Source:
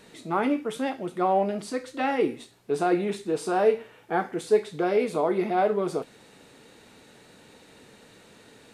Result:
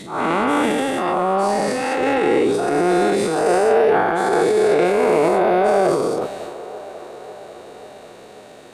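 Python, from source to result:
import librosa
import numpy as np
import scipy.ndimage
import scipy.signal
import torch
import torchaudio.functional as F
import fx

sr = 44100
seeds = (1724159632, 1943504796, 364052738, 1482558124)

y = fx.spec_dilate(x, sr, span_ms=480)
y = fx.transient(y, sr, attack_db=-11, sustain_db=8)
y = fx.echo_wet_bandpass(y, sr, ms=543, feedback_pct=68, hz=760.0, wet_db=-16)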